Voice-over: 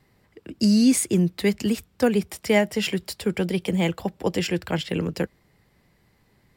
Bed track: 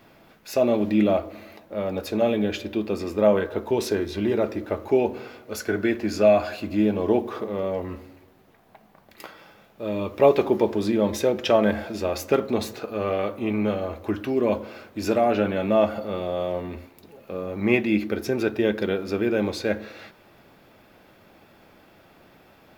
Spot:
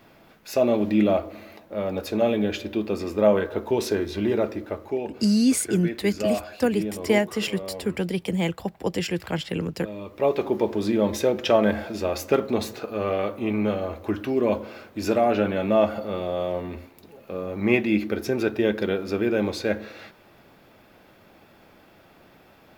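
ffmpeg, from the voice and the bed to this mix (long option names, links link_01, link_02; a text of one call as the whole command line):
ffmpeg -i stem1.wav -i stem2.wav -filter_complex "[0:a]adelay=4600,volume=-2dB[link_01];[1:a]volume=8.5dB,afade=type=out:start_time=4.37:duration=0.63:silence=0.375837,afade=type=in:start_time=10.05:duration=0.89:silence=0.375837[link_02];[link_01][link_02]amix=inputs=2:normalize=0" out.wav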